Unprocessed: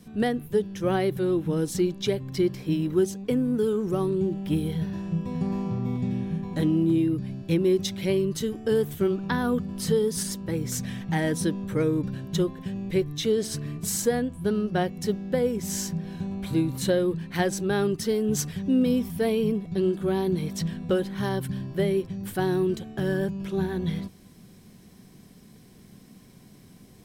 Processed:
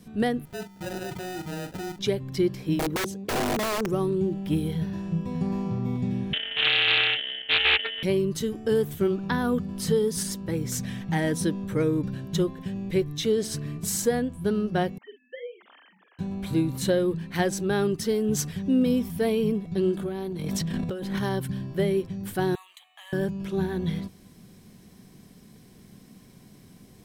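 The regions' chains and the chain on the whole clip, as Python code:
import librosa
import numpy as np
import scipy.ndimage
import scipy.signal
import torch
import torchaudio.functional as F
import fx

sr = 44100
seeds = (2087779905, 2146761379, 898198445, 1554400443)

y = fx.chain(x, sr, fx.level_steps(step_db=17),
    fx.sample_hold(seeds[0], rate_hz=1100.0, jitter_pct=0),
    fx.doubler(ms=42.0, db=-8), at=(0.45, 1.99))
y = fx.chain(y, sr, fx.highpass(hz=46.0, slope=24),
    fx.overflow_wrap(gain_db=21.0),
    fx.curve_eq(hz=(270.0, 440.0, 900.0), db=(0, 4, -3)), at=(2.79, 3.89))
y = fx.chain(y, sr, fx.sample_sort(block=32),
    fx.freq_invert(carrier_hz=3200),
    fx.doppler_dist(depth_ms=0.32), at=(6.33, 8.03))
y = fx.chain(y, sr, fx.sine_speech(),
    fx.highpass(hz=1300.0, slope=12),
    fx.doubler(ms=47.0, db=-9), at=(14.98, 16.19))
y = fx.chain(y, sr, fx.transient(attack_db=-9, sustain_db=10),
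    fx.over_compress(threshold_db=-30.0, ratio=-1.0), at=(19.97, 21.23))
y = fx.chain(y, sr, fx.highpass(hz=1100.0, slope=24),
    fx.fixed_phaser(hz=1500.0, stages=6),
    fx.resample_linear(factor=2), at=(22.55, 23.13))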